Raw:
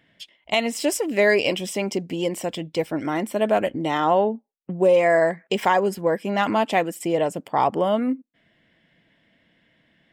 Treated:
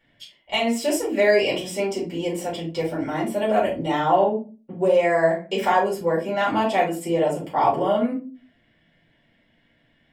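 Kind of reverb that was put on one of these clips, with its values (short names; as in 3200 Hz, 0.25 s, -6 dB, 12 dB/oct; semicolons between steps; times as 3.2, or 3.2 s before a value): shoebox room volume 150 m³, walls furnished, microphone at 4.6 m; gain -10 dB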